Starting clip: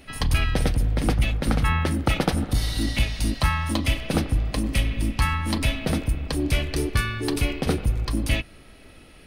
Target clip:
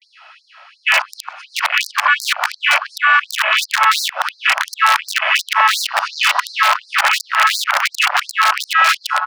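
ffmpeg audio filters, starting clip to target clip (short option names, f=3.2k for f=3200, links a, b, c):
-filter_complex "[0:a]areverse,highpass=240,equalizer=f=370:t=q:w=4:g=-8,equalizer=f=530:t=q:w=4:g=-7,equalizer=f=990:t=q:w=4:g=4,equalizer=f=1.4k:t=q:w=4:g=4,equalizer=f=2.1k:t=q:w=4:g=-5,equalizer=f=3.7k:t=q:w=4:g=-7,lowpass=f=5.4k:w=0.5412,lowpass=f=5.4k:w=1.3066,asplit=2[a][b];[b]adelay=868,lowpass=f=2.3k:p=1,volume=-4dB,asplit=2[c][d];[d]adelay=868,lowpass=f=2.3k:p=1,volume=0.41,asplit=2[e][f];[f]adelay=868,lowpass=f=2.3k:p=1,volume=0.41,asplit=2[g][h];[h]adelay=868,lowpass=f=2.3k:p=1,volume=0.41,asplit=2[i][j];[j]adelay=868,lowpass=f=2.3k:p=1,volume=0.41[k];[c][e][g][i][k]amix=inputs=5:normalize=0[l];[a][l]amix=inputs=2:normalize=0,asoftclip=type=tanh:threshold=-19dB,afwtdn=0.0178,aeval=exprs='(mod(14.1*val(0)+1,2)-1)/14.1':c=same,asplit=2[m][n];[n]highpass=f=720:p=1,volume=4dB,asoftclip=type=tanh:threshold=-22.5dB[o];[m][o]amix=inputs=2:normalize=0,lowpass=f=3k:p=1,volume=-6dB,acrossover=split=1000|2000[p][q][r];[p]acompressor=threshold=-49dB:ratio=4[s];[q]acompressor=threshold=-38dB:ratio=4[t];[r]acompressor=threshold=-43dB:ratio=4[u];[s][t][u]amix=inputs=3:normalize=0,alimiter=level_in=31.5dB:limit=-1dB:release=50:level=0:latency=1,afftfilt=real='re*gte(b*sr/1024,510*pow(4100/510,0.5+0.5*sin(2*PI*2.8*pts/sr)))':imag='im*gte(b*sr/1024,510*pow(4100/510,0.5+0.5*sin(2*PI*2.8*pts/sr)))':win_size=1024:overlap=0.75,volume=-1.5dB"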